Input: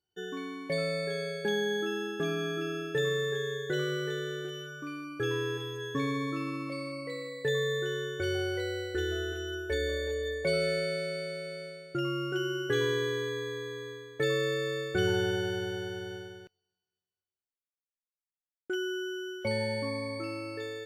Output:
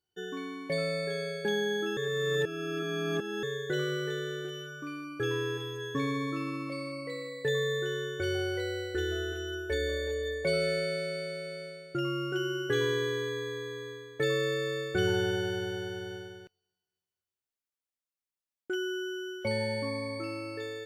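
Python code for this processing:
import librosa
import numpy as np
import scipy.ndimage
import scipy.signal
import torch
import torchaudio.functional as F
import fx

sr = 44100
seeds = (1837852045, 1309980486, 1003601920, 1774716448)

y = fx.edit(x, sr, fx.reverse_span(start_s=1.97, length_s=1.46), tone=tone)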